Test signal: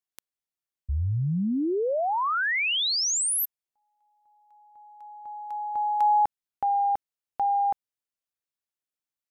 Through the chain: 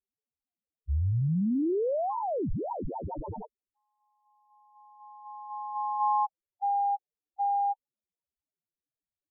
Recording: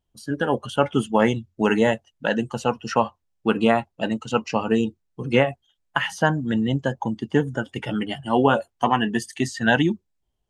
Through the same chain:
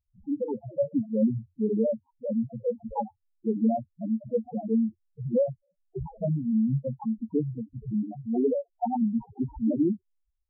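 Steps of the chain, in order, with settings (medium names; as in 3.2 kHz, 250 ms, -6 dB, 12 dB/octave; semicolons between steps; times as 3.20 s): sample-rate reducer 1.9 kHz, jitter 0%; loudest bins only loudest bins 2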